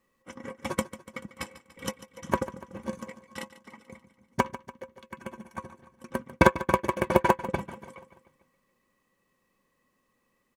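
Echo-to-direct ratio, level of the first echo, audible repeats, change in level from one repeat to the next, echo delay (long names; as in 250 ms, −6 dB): −14.0 dB, −15.5 dB, 4, −5.0 dB, 145 ms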